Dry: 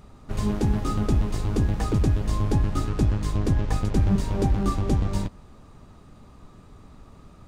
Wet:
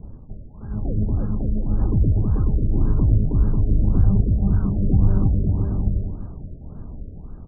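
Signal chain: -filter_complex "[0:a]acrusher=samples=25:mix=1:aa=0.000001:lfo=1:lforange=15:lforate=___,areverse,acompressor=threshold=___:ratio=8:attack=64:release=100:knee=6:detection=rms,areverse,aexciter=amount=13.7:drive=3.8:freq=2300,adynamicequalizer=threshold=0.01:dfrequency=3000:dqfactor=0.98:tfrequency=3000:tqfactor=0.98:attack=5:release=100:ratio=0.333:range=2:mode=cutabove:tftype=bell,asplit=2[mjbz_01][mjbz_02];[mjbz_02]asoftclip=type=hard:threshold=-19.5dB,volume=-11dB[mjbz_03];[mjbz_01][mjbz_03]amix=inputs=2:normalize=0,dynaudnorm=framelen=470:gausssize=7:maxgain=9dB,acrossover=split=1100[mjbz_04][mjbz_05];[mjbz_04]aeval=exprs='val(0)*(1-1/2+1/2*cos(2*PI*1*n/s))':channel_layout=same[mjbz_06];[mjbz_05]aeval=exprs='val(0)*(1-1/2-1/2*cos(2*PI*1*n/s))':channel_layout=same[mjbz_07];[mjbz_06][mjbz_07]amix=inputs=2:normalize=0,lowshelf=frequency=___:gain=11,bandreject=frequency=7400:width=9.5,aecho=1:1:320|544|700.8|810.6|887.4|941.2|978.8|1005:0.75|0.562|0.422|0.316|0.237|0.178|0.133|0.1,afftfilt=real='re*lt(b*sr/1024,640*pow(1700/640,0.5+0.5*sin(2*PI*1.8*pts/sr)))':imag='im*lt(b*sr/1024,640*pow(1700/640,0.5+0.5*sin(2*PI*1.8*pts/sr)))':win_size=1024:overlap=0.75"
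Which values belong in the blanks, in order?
1.1, -32dB, 260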